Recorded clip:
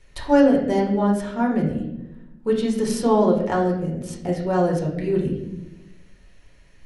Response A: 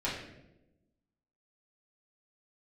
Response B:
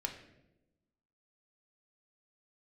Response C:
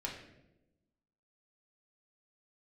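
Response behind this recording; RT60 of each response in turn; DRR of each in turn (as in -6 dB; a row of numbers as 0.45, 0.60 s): C; 0.95, 0.95, 0.95 s; -8.5, 3.0, -2.5 dB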